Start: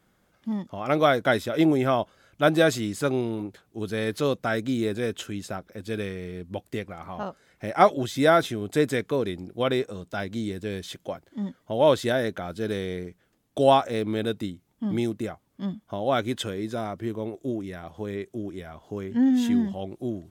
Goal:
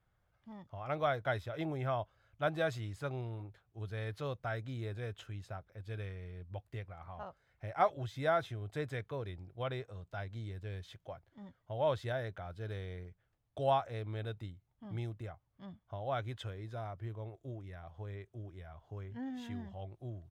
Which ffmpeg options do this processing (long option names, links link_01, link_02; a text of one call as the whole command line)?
ffmpeg -i in.wav -af "firequalizer=gain_entry='entry(110,0);entry(210,-20);entry(670,-8);entry(7400,-20)':delay=0.05:min_phase=1,volume=-3dB" out.wav